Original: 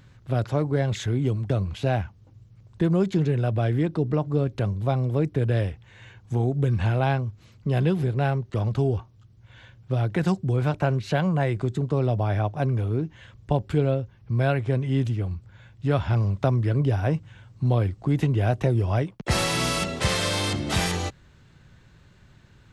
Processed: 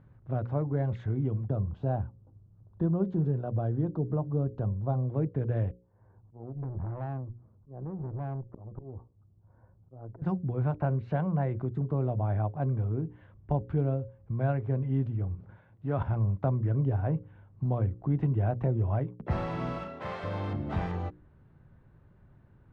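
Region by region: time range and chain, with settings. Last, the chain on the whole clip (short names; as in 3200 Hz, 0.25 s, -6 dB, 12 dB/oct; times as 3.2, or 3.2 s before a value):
1.47–5.08 bell 2200 Hz -13.5 dB 0.69 oct + notch 2100 Hz, Q 22
5.71–10.22 LPF 1200 Hz 24 dB/oct + auto swell 0.44 s + tube stage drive 27 dB, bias 0.55
15.35–16.03 HPF 180 Hz 6 dB/oct + sustainer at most 39 dB/s
19.78–20.24 HPF 560 Hz 6 dB/oct + flutter echo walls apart 6.1 m, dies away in 0.32 s
whole clip: LPF 1000 Hz 12 dB/oct; notches 60/120/180/240/300/360/420/480/540 Hz; dynamic EQ 420 Hz, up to -4 dB, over -39 dBFS, Q 1; gain -3.5 dB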